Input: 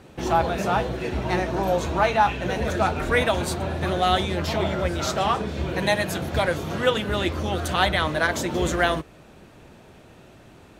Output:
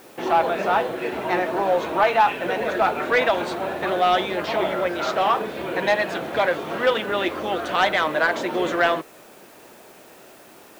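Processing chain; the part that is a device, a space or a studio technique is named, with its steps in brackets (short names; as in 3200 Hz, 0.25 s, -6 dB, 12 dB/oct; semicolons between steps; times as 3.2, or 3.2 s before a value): tape answering machine (BPF 350–3000 Hz; soft clip -14 dBFS, distortion -18 dB; wow and flutter 29 cents; white noise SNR 30 dB); gain +4.5 dB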